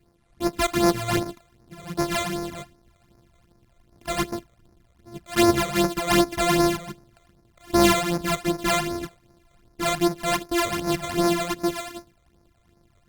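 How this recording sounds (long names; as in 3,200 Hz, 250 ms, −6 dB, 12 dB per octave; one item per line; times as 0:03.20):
a buzz of ramps at a fixed pitch in blocks of 128 samples
phaser sweep stages 12, 2.6 Hz, lowest notch 270–3,100 Hz
Opus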